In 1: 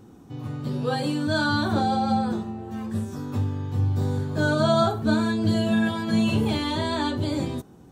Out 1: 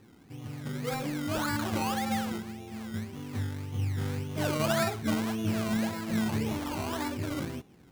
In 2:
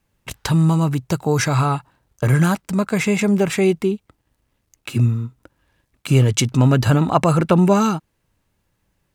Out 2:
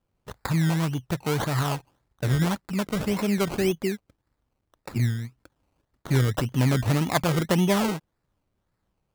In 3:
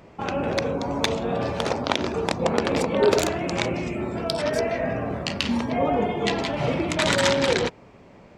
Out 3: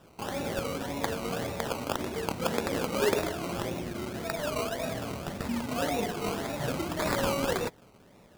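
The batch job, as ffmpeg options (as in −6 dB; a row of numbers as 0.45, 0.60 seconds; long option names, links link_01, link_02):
-af "acrusher=samples=20:mix=1:aa=0.000001:lfo=1:lforange=12:lforate=1.8,volume=-7.5dB"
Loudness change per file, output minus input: −7.5, −7.5, −7.5 LU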